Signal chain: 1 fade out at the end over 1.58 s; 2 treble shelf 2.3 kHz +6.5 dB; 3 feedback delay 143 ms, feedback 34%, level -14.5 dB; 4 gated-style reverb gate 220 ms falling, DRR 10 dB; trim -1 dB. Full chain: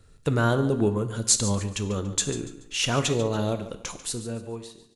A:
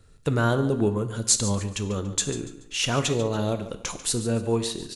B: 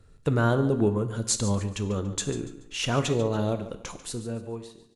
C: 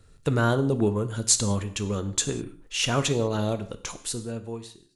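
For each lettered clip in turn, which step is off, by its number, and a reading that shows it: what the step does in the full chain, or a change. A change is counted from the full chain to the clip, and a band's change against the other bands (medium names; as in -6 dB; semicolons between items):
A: 1, momentary loudness spread change -4 LU; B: 2, 8 kHz band -5.5 dB; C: 3, echo-to-direct -8.5 dB to -10.0 dB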